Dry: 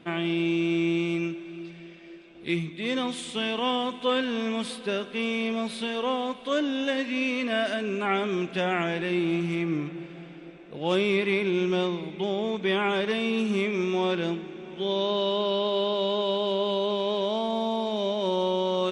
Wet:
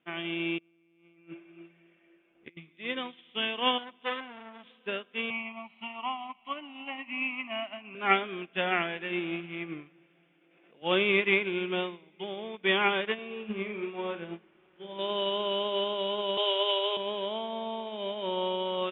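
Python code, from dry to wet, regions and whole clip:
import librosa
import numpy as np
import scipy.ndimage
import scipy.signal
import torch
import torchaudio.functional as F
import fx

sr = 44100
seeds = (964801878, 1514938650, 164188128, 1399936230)

y = fx.chain(x, sr, fx.lowpass(hz=2100.0, slope=12),
    fx.over_compress(threshold_db=-33.0, ratio=-0.5), at=(0.58, 2.57))
y = fx.chain(y, sr, fx.low_shelf(hz=200.0, db=3.5),
    fx.transformer_sat(knee_hz=1700.0), at=(3.78, 4.64))
y = fx.chain(y, sr, fx.peak_eq(hz=820.0, db=9.0, octaves=0.42),
    fx.fixed_phaser(hz=2400.0, stages=8),
    fx.band_squash(depth_pct=70), at=(5.3, 7.95))
y = fx.chain(y, sr, fx.highpass(hz=170.0, slope=12),
    fx.pre_swell(db_per_s=24.0), at=(10.41, 10.82))
y = fx.chain(y, sr, fx.delta_mod(bps=64000, step_db=-35.0),
    fx.spacing_loss(db_at_10k=26),
    fx.doubler(ms=47.0, db=-5.5), at=(13.14, 14.99))
y = fx.chain(y, sr, fx.steep_highpass(hz=380.0, slope=72),
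    fx.high_shelf(hz=2400.0, db=8.0),
    fx.band_squash(depth_pct=40), at=(16.37, 16.97))
y = scipy.signal.sosfilt(scipy.signal.butter(16, 3400.0, 'lowpass', fs=sr, output='sos'), y)
y = fx.tilt_eq(y, sr, slope=2.5)
y = fx.upward_expand(y, sr, threshold_db=-39.0, expansion=2.5)
y = F.gain(torch.from_numpy(y), 4.0).numpy()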